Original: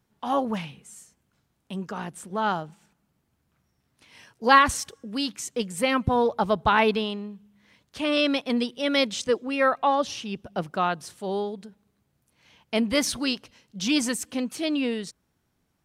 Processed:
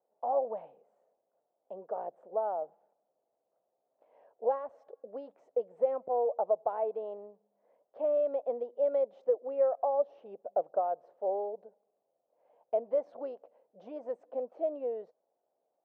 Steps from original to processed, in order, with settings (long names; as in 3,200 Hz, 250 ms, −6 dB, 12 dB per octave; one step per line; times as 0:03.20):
downward compressor 5 to 1, threshold −27 dBFS, peak gain reduction 14.5 dB
flat-topped band-pass 600 Hz, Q 2.4
level +6 dB